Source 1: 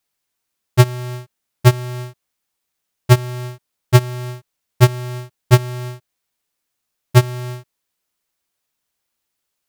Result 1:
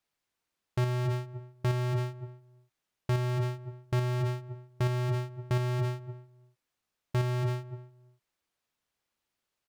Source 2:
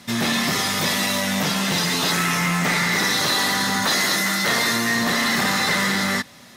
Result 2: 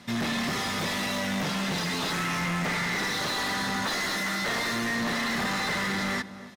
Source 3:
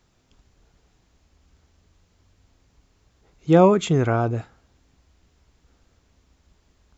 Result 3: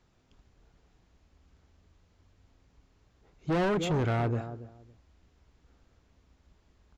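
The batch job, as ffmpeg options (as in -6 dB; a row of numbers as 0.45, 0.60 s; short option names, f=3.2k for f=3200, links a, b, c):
-filter_complex "[0:a]asplit=2[a][b];[b]adelay=280,lowpass=f=840:p=1,volume=-15dB,asplit=2[c][d];[d]adelay=280,lowpass=f=840:p=1,volume=0.21[e];[a][c][e]amix=inputs=3:normalize=0,volume=22dB,asoftclip=hard,volume=-22dB,lowpass=f=3.6k:p=1,volume=-3dB"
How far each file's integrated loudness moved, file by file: -14.5, -8.5, -11.0 LU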